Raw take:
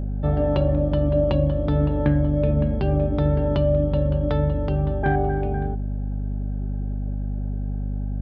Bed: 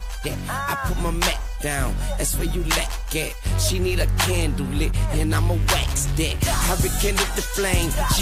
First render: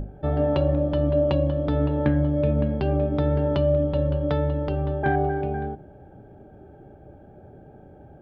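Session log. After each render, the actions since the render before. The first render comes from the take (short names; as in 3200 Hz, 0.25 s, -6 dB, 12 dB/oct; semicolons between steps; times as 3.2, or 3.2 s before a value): notches 50/100/150/200/250 Hz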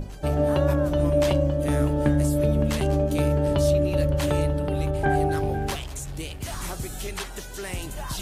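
add bed -12 dB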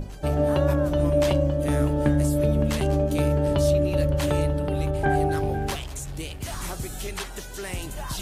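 nothing audible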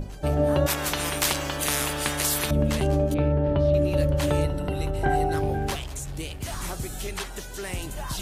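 0.66–2.51 spectral compressor 4:1; 3.14–3.74 air absorption 350 m; 4.44–5.34 ripple EQ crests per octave 2, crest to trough 10 dB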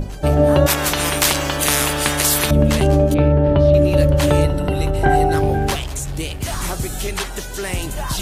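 gain +8.5 dB; limiter -2 dBFS, peak gain reduction 2 dB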